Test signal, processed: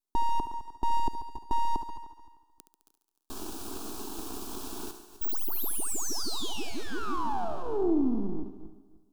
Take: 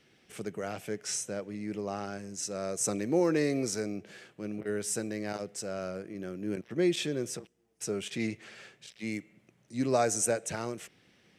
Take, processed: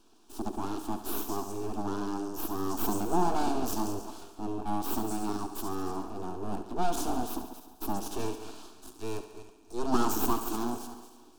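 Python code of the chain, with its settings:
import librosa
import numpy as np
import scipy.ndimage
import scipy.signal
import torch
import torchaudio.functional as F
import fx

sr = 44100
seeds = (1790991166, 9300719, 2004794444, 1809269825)

p1 = fx.reverse_delay_fb(x, sr, ms=152, feedback_pct=45, wet_db=-13.5)
p2 = np.abs(p1)
p3 = fx.peak_eq(p2, sr, hz=320.0, db=10.5, octaves=1.7)
p4 = 10.0 ** (-29.0 / 20.0) * np.tanh(p3 / 10.0 ** (-29.0 / 20.0))
p5 = p3 + (p4 * 10.0 ** (-4.0 / 20.0))
p6 = fx.fixed_phaser(p5, sr, hz=540.0, stages=6)
y = fx.echo_thinned(p6, sr, ms=70, feedback_pct=69, hz=210.0, wet_db=-11.0)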